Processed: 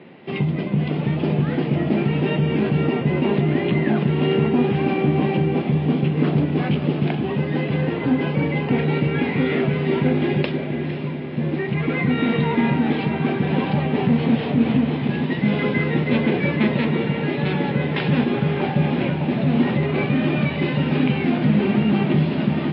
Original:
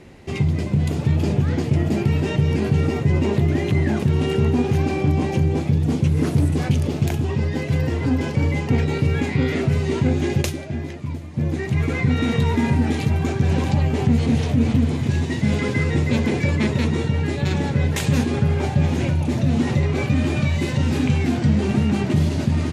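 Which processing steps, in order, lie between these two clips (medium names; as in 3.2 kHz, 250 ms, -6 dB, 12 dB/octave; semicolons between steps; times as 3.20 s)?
elliptic band-pass 160–3200 Hz, stop band 60 dB; echo that smears into a reverb 534 ms, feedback 66%, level -11 dB; trim +3 dB; MP3 24 kbps 12 kHz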